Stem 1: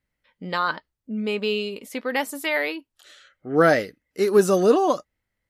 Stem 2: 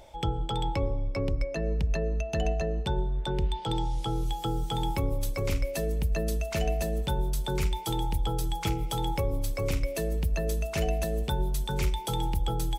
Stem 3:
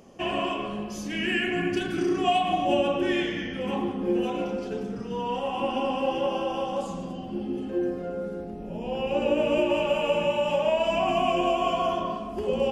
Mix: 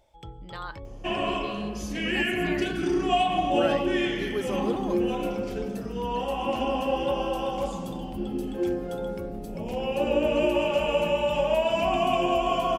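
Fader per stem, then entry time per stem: -14.5, -13.5, 0.0 dB; 0.00, 0.00, 0.85 s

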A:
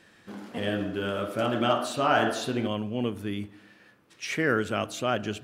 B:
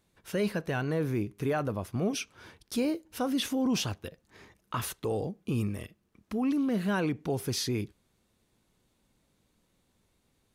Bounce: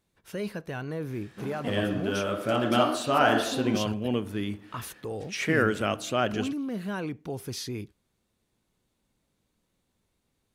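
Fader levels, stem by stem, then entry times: +1.0, -4.0 dB; 1.10, 0.00 s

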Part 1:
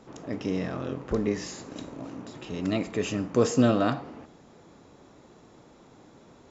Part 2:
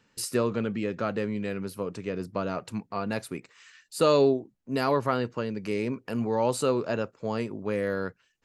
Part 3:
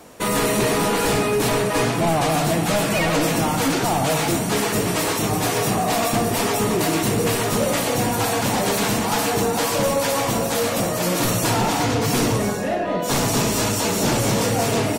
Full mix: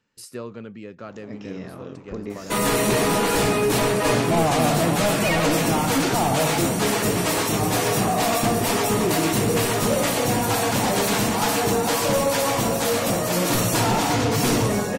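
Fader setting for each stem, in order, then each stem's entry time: -5.5, -8.0, -0.5 dB; 1.00, 0.00, 2.30 s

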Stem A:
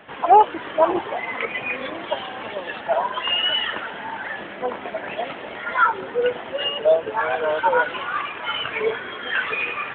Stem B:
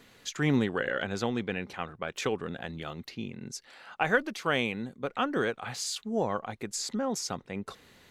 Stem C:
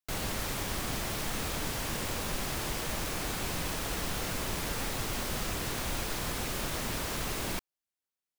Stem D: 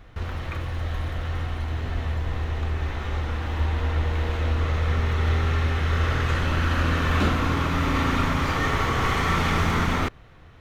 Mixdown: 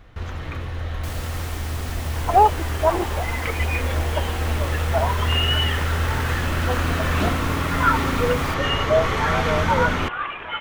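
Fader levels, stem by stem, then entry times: -2.0, -17.0, -1.5, 0.0 dB; 2.05, 0.00, 0.95, 0.00 s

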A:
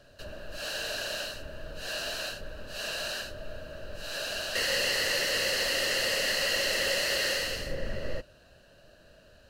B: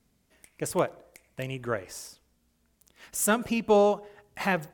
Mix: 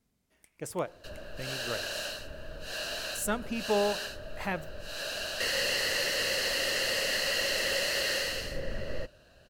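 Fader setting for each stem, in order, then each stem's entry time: -1.5, -7.0 dB; 0.85, 0.00 s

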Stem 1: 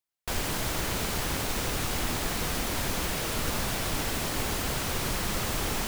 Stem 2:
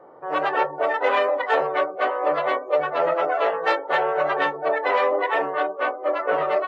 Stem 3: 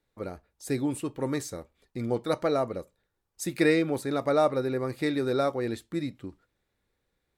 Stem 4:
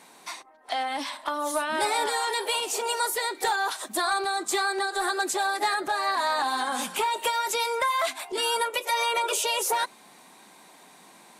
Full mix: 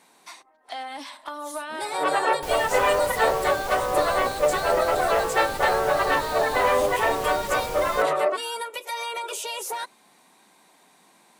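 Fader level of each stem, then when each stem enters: -6.5 dB, -0.5 dB, off, -5.5 dB; 2.15 s, 1.70 s, off, 0.00 s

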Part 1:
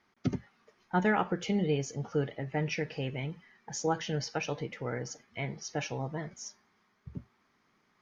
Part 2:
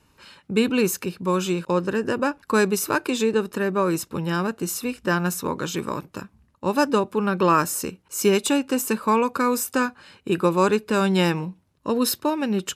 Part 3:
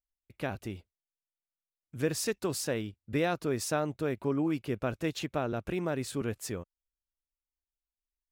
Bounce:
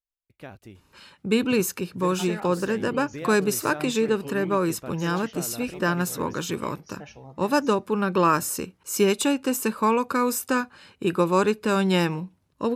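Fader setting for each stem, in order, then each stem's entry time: -9.0, -1.5, -7.0 dB; 1.25, 0.75, 0.00 s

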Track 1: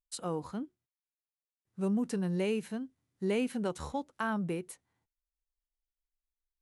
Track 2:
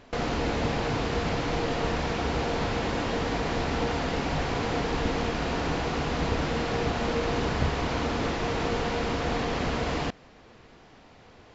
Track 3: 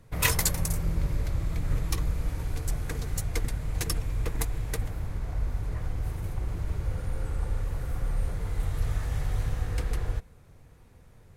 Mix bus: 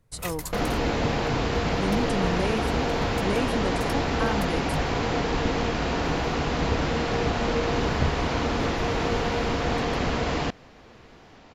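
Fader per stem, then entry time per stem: +3.0, +2.5, -10.5 dB; 0.00, 0.40, 0.00 s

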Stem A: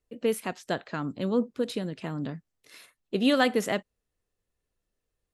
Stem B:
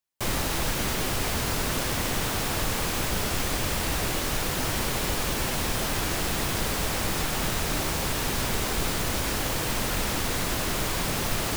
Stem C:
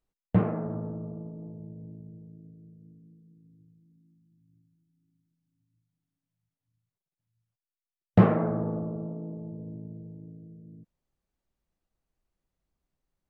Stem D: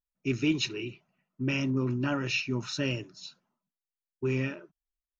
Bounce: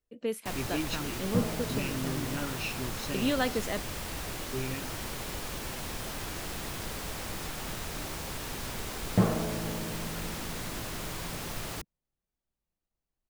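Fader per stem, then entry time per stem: -6.0, -10.0, -6.0, -7.0 dB; 0.00, 0.25, 1.00, 0.30 s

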